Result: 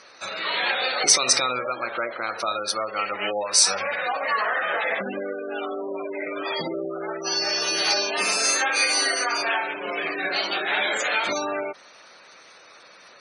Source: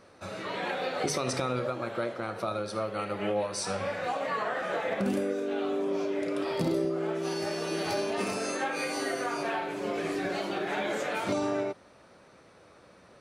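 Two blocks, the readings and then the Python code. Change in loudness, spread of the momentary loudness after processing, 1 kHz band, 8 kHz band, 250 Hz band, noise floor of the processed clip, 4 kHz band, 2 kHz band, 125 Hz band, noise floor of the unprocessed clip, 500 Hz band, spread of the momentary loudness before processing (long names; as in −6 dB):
+8.0 dB, 13 LU, +6.5 dB, +17.5 dB, −3.5 dB, −50 dBFS, +15.5 dB, +11.5 dB, −9.5 dB, −56 dBFS, +1.0 dB, 4 LU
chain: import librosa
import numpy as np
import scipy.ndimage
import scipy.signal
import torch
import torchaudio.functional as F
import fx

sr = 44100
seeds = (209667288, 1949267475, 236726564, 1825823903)

y = fx.spec_gate(x, sr, threshold_db=-25, keep='strong')
y = fx.weighting(y, sr, curve='ITU-R 468')
y = y * 10.0 ** (7.0 / 20.0)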